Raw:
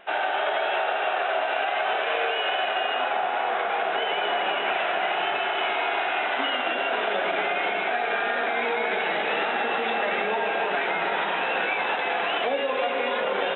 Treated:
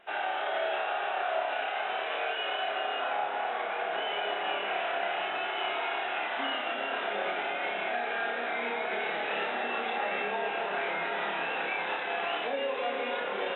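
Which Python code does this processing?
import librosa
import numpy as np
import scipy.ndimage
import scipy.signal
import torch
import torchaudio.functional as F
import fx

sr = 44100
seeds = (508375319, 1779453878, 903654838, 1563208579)

y = fx.room_flutter(x, sr, wall_m=5.0, rt60_s=0.39)
y = y * librosa.db_to_amplitude(-8.5)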